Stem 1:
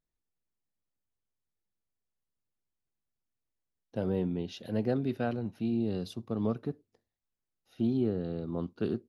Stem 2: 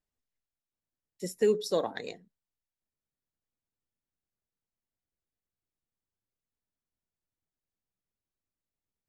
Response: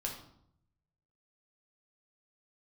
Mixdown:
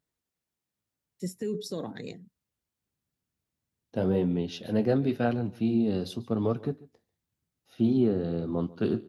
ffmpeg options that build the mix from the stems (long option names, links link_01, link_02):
-filter_complex "[0:a]acontrast=84,flanger=delay=6.8:depth=7.4:regen=-59:speed=0.92:shape=sinusoidal,volume=2dB,asplit=2[link_01][link_02];[link_02]volume=-21dB[link_03];[1:a]asubboost=boost=11:cutoff=250,alimiter=limit=-22dB:level=0:latency=1:release=24,volume=-2.5dB[link_04];[link_03]aecho=0:1:142:1[link_05];[link_01][link_04][link_05]amix=inputs=3:normalize=0,highpass=78"